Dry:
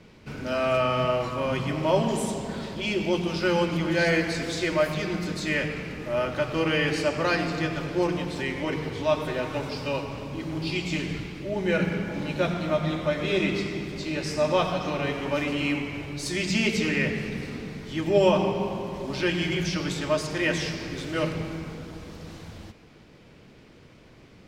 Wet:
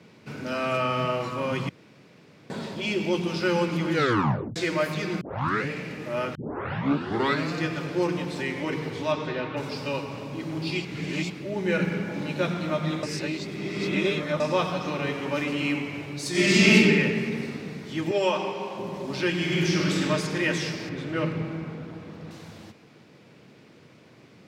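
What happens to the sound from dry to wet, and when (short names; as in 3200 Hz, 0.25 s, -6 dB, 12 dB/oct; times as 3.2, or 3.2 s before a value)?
1.69–2.5 room tone
3.93 tape stop 0.63 s
5.21 tape start 0.48 s
6.35 tape start 1.18 s
9.12–9.56 LPF 7500 Hz -> 3500 Hz 24 dB/oct
10.85–11.3 reverse
13.03–14.4 reverse
16.3–16.74 reverb throw, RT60 1.9 s, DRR -9.5 dB
18.11–18.78 weighting filter A
19.4–20.03 reverb throw, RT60 2.8 s, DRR -1.5 dB
20.89–22.31 tone controls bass +3 dB, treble -13 dB
whole clip: dynamic EQ 670 Hz, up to -6 dB, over -42 dBFS, Q 4.3; HPF 110 Hz 24 dB/oct; notch 3100 Hz, Q 29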